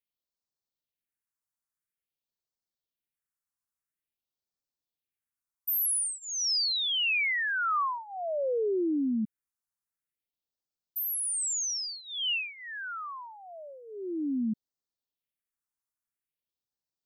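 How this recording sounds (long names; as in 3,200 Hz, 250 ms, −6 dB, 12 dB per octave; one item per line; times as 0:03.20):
phaser sweep stages 4, 0.49 Hz, lowest notch 480–2,400 Hz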